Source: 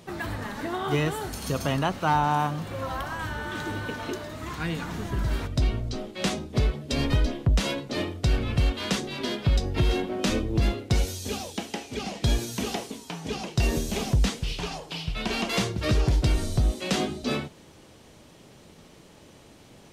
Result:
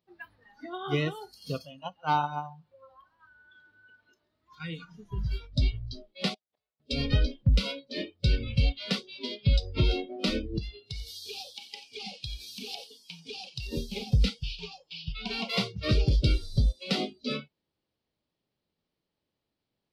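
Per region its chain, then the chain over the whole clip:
0:01.65–0:04.52: noise gate −24 dBFS, range −7 dB + parametric band 140 Hz −3 dB 0.25 octaves + repeating echo 135 ms, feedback 31%, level −11 dB
0:06.34–0:06.80: gate with flip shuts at −26 dBFS, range −25 dB + high-pass filter 110 Hz + low shelf with overshoot 450 Hz −12.5 dB, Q 1.5
0:10.58–0:13.73: high-shelf EQ 2,700 Hz +6.5 dB + downward compressor 16 to 1, threshold −26 dBFS + single-tap delay 89 ms −10.5 dB
whole clip: noise reduction from a noise print of the clip's start 22 dB; high shelf with overshoot 5,600 Hz −6.5 dB, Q 3; expander for the loud parts 1.5 to 1, over −41 dBFS

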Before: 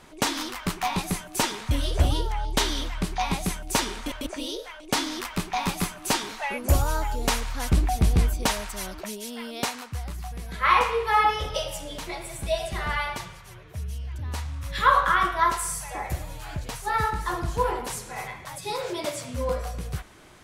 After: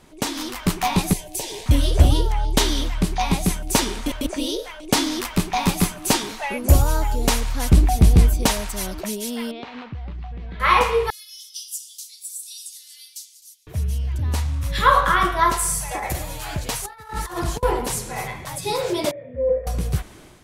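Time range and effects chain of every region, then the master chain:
0:01.13–0:01.66: downward compressor 4 to 1, threshold −30 dBFS + phaser with its sweep stopped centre 540 Hz, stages 4
0:09.51–0:10.60: low-pass filter 3,400 Hz 24 dB per octave + downward compressor 16 to 1, threshold −37 dBFS
0:11.10–0:13.67: inverse Chebyshev high-pass filter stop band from 860 Hz, stop band 80 dB + repeating echo 260 ms, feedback 30%, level −17 dB
0:15.91–0:17.63: low-shelf EQ 350 Hz −9.5 dB + compressor whose output falls as the input rises −34 dBFS, ratio −0.5
0:19.11–0:19.67: formant resonators in series e + low-shelf EQ 480 Hz +5.5 dB + notch filter 2,600 Hz, Q 5.8
whole clip: drawn EQ curve 290 Hz 0 dB, 1,400 Hz −6 dB, 12,000 Hz +7 dB; automatic gain control gain up to 8 dB; high-shelf EQ 4,200 Hz −8 dB; level +1.5 dB

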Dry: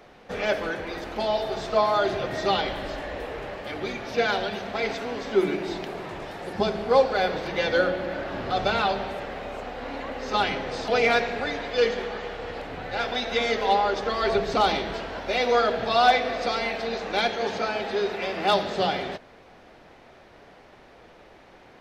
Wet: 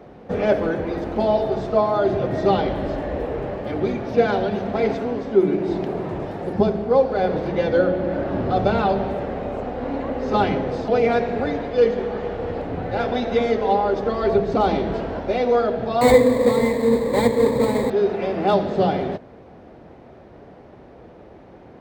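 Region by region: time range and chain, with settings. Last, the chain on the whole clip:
0:16.01–0:17.90: each half-wave held at its own peak + EQ curve with evenly spaced ripples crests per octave 1, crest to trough 17 dB
whole clip: high-pass filter 55 Hz; tilt shelving filter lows +10 dB; speech leveller within 3 dB 0.5 s

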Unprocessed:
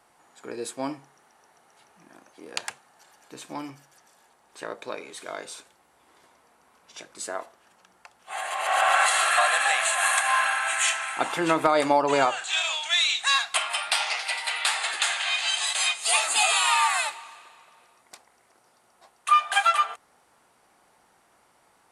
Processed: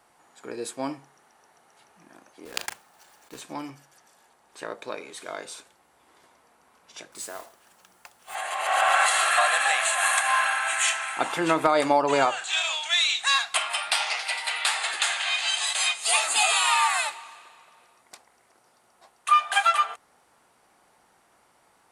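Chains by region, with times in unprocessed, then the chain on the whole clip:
0:02.45–0:03.42: one scale factor per block 3 bits + double-tracking delay 39 ms −10 dB
0:07.12–0:08.35: high-shelf EQ 6,400 Hz +8.5 dB + downward compressor 2 to 1, threshold −37 dBFS + noise that follows the level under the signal 10 dB
whole clip: no processing

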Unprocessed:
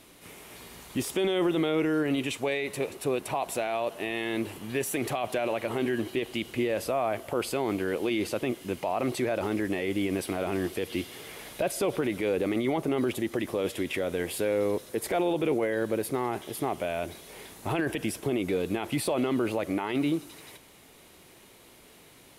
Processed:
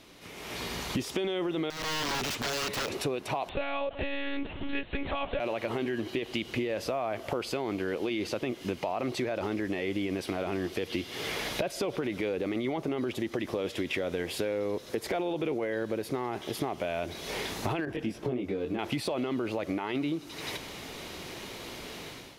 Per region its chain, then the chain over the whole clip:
0:01.70–0:02.89: downward compressor 4 to 1, threshold −28 dBFS + wrap-around overflow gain 31 dB
0:03.49–0:05.40: high-pass filter 140 Hz 24 dB per octave + one-pitch LPC vocoder at 8 kHz 280 Hz
0:17.85–0:18.79: high-shelf EQ 2,100 Hz −10 dB + micro pitch shift up and down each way 14 cents
whole clip: downward compressor 6 to 1, threshold −43 dBFS; high shelf with overshoot 7,100 Hz −7.5 dB, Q 1.5; automatic gain control gain up to 13 dB

